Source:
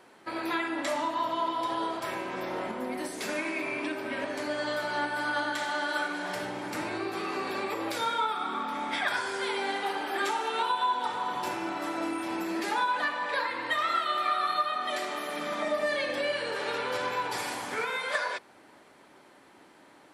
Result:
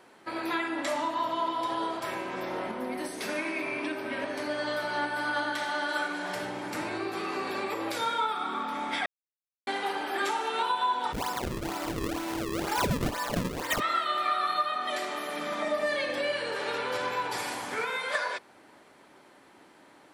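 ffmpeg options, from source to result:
-filter_complex "[0:a]asettb=1/sr,asplit=3[s0][s1][s2];[s0]atrim=end=2.574[s3];[s1]atrim=start=2.57:end=5.89,asetpts=PTS-STARTPTS,afade=t=in:d=0.004:c=qsin,afade=t=out:st=3.316:d=0.004:c=qsin,bandreject=f=7200:w=5.9[s4];[s2]atrim=start=5.886[s5];[s3][s4]acrossfade=d=0.004:c1=hsin:c2=qsin[s6];[s6][s5]acrossfade=d=0.004:c1=qsin:c2=hsin,asplit=3[s7][s8][s9];[s7]afade=t=out:st=11.12:d=0.02[s10];[s8]acrusher=samples=34:mix=1:aa=0.000001:lfo=1:lforange=54.4:lforate=2.1,afade=t=in:st=11.12:d=0.02,afade=t=out:st=13.79:d=0.02[s11];[s9]afade=t=in:st=13.79:d=0.02[s12];[s10][s11][s12]amix=inputs=3:normalize=0,asplit=3[s13][s14][s15];[s13]atrim=end=9.06,asetpts=PTS-STARTPTS,afade=t=out:st=9.056:d=0.004:c=hsin[s16];[s14]atrim=start=9.06:end=9.67,asetpts=PTS-STARTPTS,volume=0[s17];[s15]atrim=start=9.67,asetpts=PTS-STARTPTS,afade=t=in:d=0.004:c=hsin[s18];[s16][s17][s18]concat=n=3:v=0:a=1"

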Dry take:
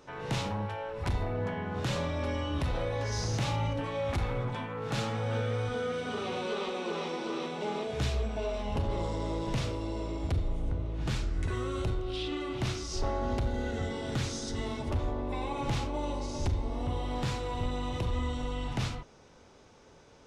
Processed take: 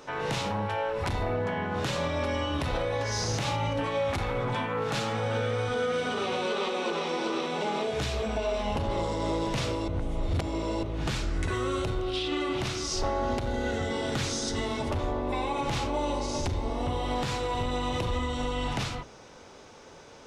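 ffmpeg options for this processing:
-filter_complex "[0:a]asplit=3[s0][s1][s2];[s0]atrim=end=9.882[s3];[s1]atrim=start=9.878:end=10.832,asetpts=PTS-STARTPTS,areverse[s4];[s2]atrim=start=10.828[s5];[s3][s4]acrossfade=d=0.004:c1=hsin:c2=hsin[s6];[s6][s5]acrossfade=d=0.004:c1=hsin:c2=hsin,lowshelf=f=200:g=-7,bandreject=f=60:t=h:w=6,bandreject=f=120:t=h:w=6,bandreject=f=180:t=h:w=6,bandreject=f=240:t=h:w=6,bandreject=f=300:t=h:w=6,bandreject=f=360:t=h:w=6,bandreject=f=420:t=h:w=6,alimiter=level_in=1.88:limit=0.0631:level=0:latency=1:release=201,volume=0.531,volume=2.82"

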